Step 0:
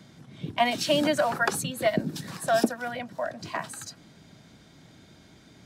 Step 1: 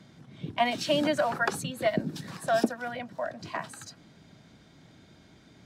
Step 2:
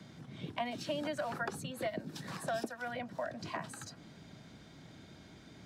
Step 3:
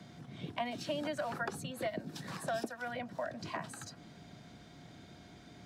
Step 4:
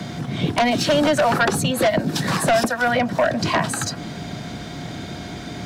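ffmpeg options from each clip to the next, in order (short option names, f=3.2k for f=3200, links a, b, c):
-af "highshelf=f=7.3k:g=-8,volume=-2dB"
-filter_complex "[0:a]acrossover=split=100|480|1600[a][b][c][d];[a]acompressor=threshold=-58dB:ratio=4[e];[b]acompressor=threshold=-44dB:ratio=4[f];[c]acompressor=threshold=-42dB:ratio=4[g];[d]acompressor=threshold=-48dB:ratio=4[h];[e][f][g][h]amix=inputs=4:normalize=0,volume=1dB"
-af "aeval=exprs='val(0)+0.000631*sin(2*PI*710*n/s)':c=same"
-af "aeval=exprs='0.0891*sin(PI/2*3.16*val(0)/0.0891)':c=same,volume=8.5dB"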